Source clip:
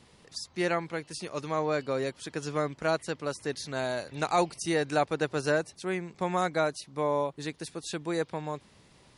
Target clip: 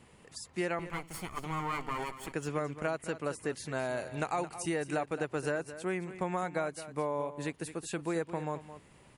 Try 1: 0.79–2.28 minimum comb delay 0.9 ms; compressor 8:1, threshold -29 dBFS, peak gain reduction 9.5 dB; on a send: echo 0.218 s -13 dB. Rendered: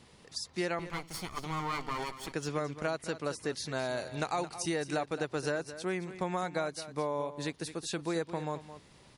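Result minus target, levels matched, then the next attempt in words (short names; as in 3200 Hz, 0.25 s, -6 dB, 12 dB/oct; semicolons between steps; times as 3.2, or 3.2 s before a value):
4000 Hz band +6.5 dB
0.79–2.28 minimum comb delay 0.9 ms; compressor 8:1, threshold -29 dBFS, peak gain reduction 9.5 dB; band shelf 4600 Hz -8.5 dB 1 oct; on a send: echo 0.218 s -13 dB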